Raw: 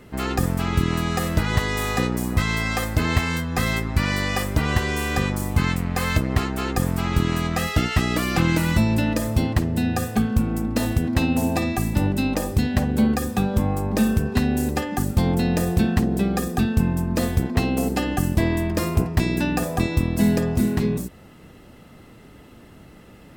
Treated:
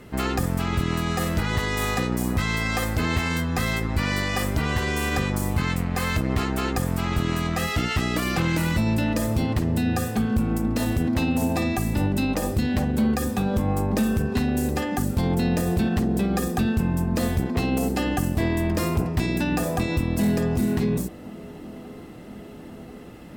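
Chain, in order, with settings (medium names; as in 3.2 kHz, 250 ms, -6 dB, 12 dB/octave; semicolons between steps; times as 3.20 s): one-sided clip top -13 dBFS, bottom -11 dBFS; peak limiter -16.5 dBFS, peak gain reduction 6 dB; on a send: feedback echo behind a band-pass 1039 ms, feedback 76%, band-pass 430 Hz, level -17.5 dB; on the sum: trim +1.5 dB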